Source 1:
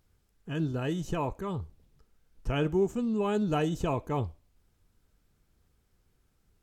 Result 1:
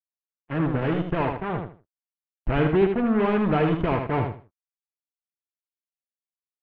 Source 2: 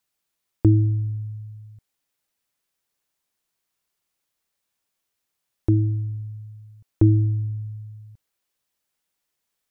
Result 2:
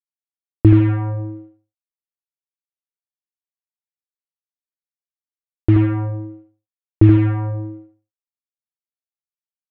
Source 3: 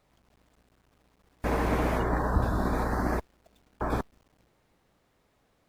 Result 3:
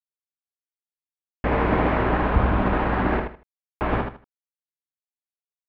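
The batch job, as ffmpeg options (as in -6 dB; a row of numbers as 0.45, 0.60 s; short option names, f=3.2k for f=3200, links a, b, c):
-af "acrusher=bits=4:mix=0:aa=0.5,lowpass=f=2.5k:w=0.5412,lowpass=f=2.5k:w=1.3066,aecho=1:1:78|156|234:0.501|0.115|0.0265,volume=5.5dB"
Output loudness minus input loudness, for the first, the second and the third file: +7.0, +6.0, +6.5 LU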